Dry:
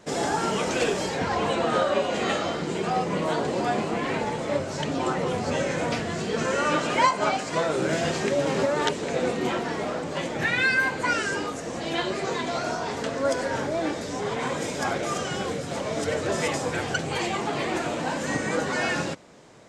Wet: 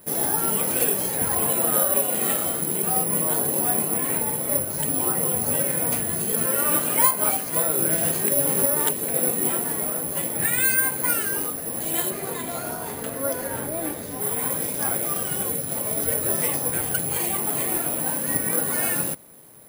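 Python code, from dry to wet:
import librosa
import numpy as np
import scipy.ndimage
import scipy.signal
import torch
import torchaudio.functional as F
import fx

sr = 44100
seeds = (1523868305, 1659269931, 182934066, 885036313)

y = fx.low_shelf(x, sr, hz=240.0, db=5.0)
y = (np.kron(scipy.signal.resample_poly(y, 1, 4), np.eye(4)[0]) * 4)[:len(y)]
y = fx.high_shelf(y, sr, hz=7300.0, db=-9.0, at=(12.1, 14.21))
y = y * 10.0 ** (-4.5 / 20.0)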